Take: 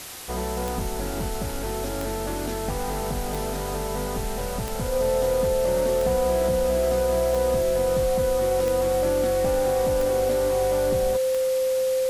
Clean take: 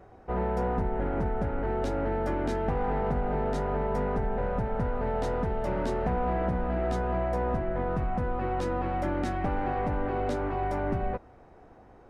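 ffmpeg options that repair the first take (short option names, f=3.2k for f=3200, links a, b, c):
-af "adeclick=t=4,bandreject=f=520:w=30,afwtdn=0.014"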